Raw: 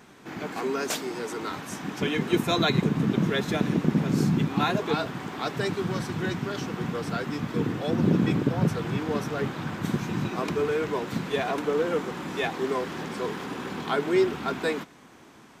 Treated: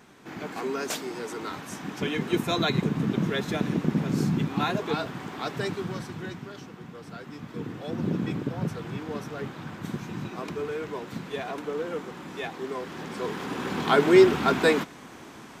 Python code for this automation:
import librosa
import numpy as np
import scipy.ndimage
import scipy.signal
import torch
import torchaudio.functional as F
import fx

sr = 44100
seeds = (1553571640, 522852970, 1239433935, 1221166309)

y = fx.gain(x, sr, db=fx.line((5.65, -2.0), (6.86, -13.0), (8.01, -6.0), (12.73, -6.0), (14.01, 6.5)))